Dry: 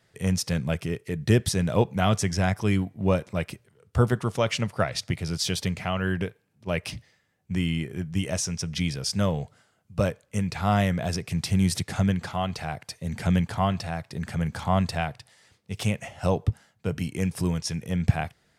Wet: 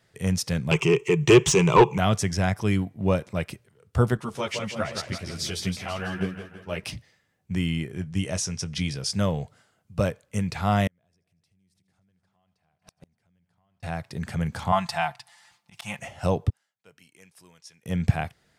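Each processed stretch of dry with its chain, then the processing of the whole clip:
0.71–1.98 s: rippled EQ curve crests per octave 0.72, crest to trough 17 dB + overdrive pedal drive 19 dB, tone 2.9 kHz, clips at -4.5 dBFS + band-stop 2.5 kHz, Q 24
4.17–6.84 s: bass shelf 130 Hz -5.5 dB + feedback delay 165 ms, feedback 49%, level -6.5 dB + three-phase chorus
7.91–9.13 s: Chebyshev low-pass 11 kHz, order 4 + doubling 21 ms -14 dB
10.87–13.83 s: multi-head delay 79 ms, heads first and third, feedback 60%, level -16.5 dB + compression 4:1, threshold -25 dBFS + inverted gate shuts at -26 dBFS, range -40 dB
14.72–15.99 s: resonant low shelf 620 Hz -9.5 dB, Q 3 + comb 5.8 ms, depth 69% + slow attack 126 ms
16.50–17.86 s: low-pass 1.2 kHz 6 dB/octave + differentiator
whole clip: none

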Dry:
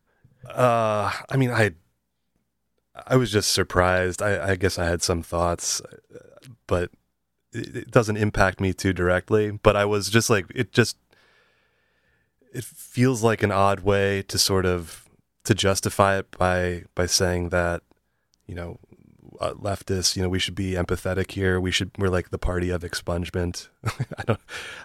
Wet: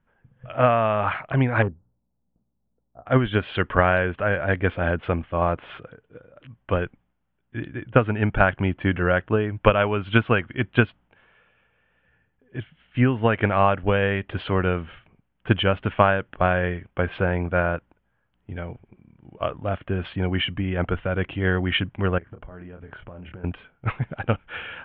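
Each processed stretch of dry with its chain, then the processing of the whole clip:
1.62–3.06 s: Gaussian low-pass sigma 10 samples + overload inside the chain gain 19 dB
22.18–23.44 s: treble shelf 2.9 kHz -12 dB + doubling 27 ms -8 dB + compression 20:1, threshold -36 dBFS
whole clip: steep low-pass 3.2 kHz 72 dB/octave; peaking EQ 400 Hz -5 dB 0.62 oct; trim +1.5 dB

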